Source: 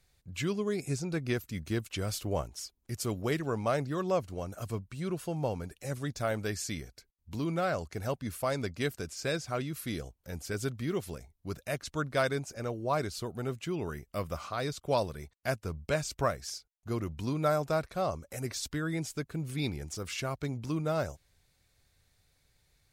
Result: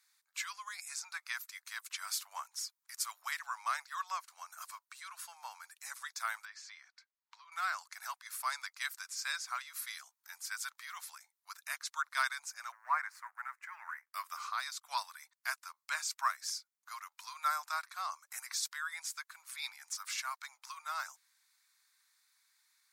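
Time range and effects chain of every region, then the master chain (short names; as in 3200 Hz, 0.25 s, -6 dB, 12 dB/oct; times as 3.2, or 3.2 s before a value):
6.45–7.52 compressor, threshold -37 dBFS + air absorption 160 m
12.72–14.14 G.711 law mismatch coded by A + resonant high shelf 2600 Hz -11 dB, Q 3
whole clip: steep high-pass 960 Hz 48 dB/oct; bell 2900 Hz -8.5 dB 0.5 oct; gain +2 dB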